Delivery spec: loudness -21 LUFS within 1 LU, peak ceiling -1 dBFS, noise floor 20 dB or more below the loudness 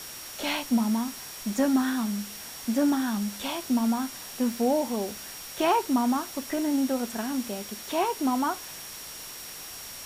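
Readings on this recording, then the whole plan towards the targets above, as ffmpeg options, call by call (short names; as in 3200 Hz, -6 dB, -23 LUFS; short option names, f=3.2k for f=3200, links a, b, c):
steady tone 5600 Hz; tone level -45 dBFS; noise floor -41 dBFS; noise floor target -49 dBFS; loudness -28.5 LUFS; peak -12.0 dBFS; loudness target -21.0 LUFS
-> -af "bandreject=f=5.6k:w=30"
-af "afftdn=nr=8:nf=-41"
-af "volume=7.5dB"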